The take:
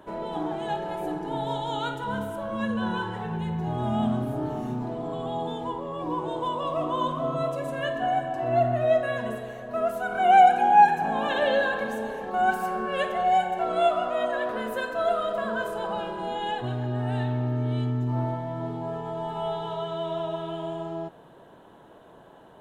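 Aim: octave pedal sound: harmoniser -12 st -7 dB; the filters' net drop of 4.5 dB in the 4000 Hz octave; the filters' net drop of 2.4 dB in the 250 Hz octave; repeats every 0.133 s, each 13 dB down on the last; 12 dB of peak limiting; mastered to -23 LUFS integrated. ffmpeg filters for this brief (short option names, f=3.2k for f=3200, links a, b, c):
-filter_complex "[0:a]equalizer=f=250:t=o:g=-3,equalizer=f=4k:t=o:g=-6.5,alimiter=limit=-19dB:level=0:latency=1,aecho=1:1:133|266|399:0.224|0.0493|0.0108,asplit=2[a][b];[b]asetrate=22050,aresample=44100,atempo=2,volume=-7dB[c];[a][c]amix=inputs=2:normalize=0,volume=6dB"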